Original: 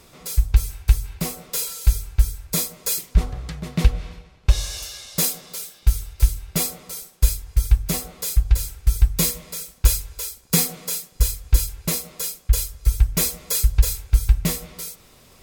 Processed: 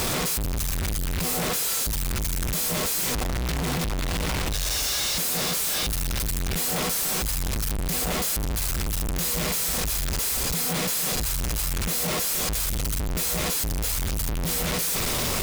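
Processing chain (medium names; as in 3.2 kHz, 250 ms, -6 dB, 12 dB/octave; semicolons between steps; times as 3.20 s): one-bit comparator; trim -5 dB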